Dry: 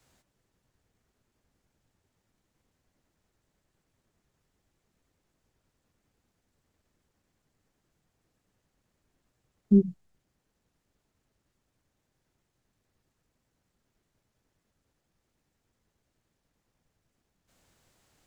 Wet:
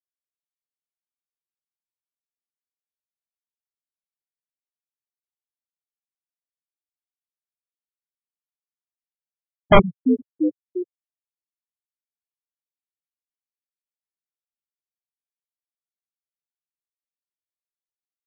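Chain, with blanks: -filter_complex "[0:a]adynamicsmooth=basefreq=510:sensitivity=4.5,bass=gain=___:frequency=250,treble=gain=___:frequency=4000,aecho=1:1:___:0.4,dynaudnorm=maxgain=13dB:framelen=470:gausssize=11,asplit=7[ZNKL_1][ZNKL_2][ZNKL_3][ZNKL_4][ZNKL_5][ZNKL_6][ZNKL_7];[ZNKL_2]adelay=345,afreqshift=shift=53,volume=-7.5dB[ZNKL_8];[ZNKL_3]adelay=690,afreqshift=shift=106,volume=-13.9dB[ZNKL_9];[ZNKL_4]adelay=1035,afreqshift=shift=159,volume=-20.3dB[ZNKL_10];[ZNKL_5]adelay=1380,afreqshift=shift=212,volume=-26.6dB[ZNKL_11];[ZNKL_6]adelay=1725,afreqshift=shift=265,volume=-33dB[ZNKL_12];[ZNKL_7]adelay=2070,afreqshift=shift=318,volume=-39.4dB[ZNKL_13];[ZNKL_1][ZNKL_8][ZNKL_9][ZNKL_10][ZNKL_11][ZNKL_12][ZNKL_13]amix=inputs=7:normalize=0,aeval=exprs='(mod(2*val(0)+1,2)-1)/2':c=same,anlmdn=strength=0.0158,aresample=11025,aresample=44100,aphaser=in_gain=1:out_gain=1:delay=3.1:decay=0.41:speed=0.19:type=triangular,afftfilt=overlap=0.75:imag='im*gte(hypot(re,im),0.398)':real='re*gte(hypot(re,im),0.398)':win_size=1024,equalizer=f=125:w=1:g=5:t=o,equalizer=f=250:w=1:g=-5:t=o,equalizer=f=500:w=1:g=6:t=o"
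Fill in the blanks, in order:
-3, 8, 3.7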